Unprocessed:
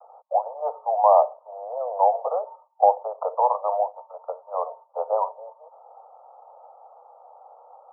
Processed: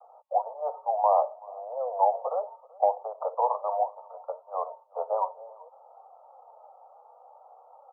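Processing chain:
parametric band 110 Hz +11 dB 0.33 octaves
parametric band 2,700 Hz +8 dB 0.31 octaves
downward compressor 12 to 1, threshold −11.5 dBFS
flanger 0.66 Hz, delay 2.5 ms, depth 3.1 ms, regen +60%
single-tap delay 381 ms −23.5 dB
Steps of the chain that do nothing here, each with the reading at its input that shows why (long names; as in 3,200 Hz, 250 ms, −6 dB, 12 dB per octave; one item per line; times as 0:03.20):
parametric band 110 Hz: nothing at its input below 400 Hz
parametric band 2,700 Hz: nothing at its input above 1,300 Hz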